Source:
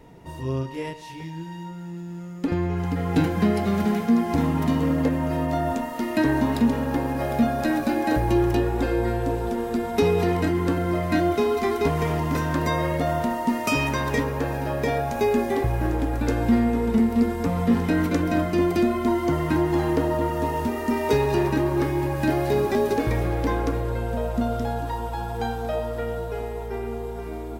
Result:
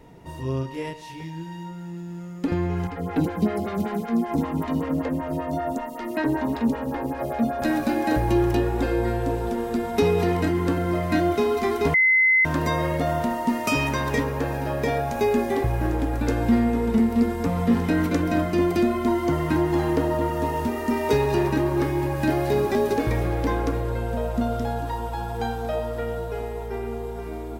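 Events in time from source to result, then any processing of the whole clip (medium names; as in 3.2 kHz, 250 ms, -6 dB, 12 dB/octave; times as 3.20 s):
2.87–7.62 s: lamp-driven phase shifter 5.2 Hz
11.94–12.45 s: bleep 2.05 kHz -14.5 dBFS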